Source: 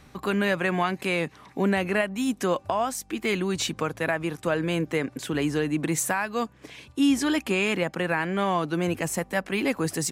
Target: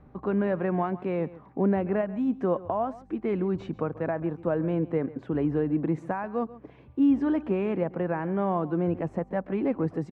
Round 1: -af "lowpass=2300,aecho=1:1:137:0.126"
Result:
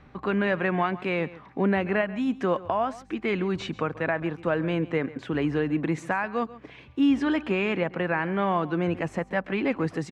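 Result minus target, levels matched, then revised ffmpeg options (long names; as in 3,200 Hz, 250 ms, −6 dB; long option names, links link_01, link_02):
2,000 Hz band +10.5 dB
-af "lowpass=840,aecho=1:1:137:0.126"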